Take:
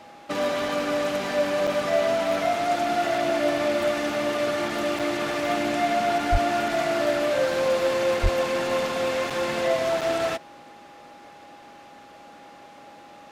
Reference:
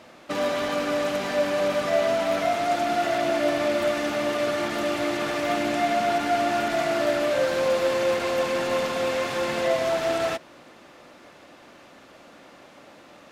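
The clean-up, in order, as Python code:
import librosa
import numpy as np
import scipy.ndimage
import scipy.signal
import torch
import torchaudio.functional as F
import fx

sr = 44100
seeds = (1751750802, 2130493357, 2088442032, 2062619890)

y = fx.fix_declip(x, sr, threshold_db=-13.5)
y = fx.notch(y, sr, hz=820.0, q=30.0)
y = fx.fix_deplosive(y, sr, at_s=(6.31, 8.22))
y = fx.fix_interpolate(y, sr, at_s=(1.67, 4.99, 9.3, 10.01), length_ms=5.7)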